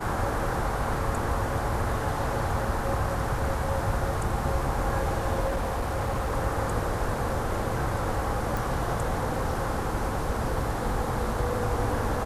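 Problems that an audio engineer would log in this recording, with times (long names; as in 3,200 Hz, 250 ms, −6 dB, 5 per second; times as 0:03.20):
0:05.46–0:06.33: clipping −23.5 dBFS
0:08.57: click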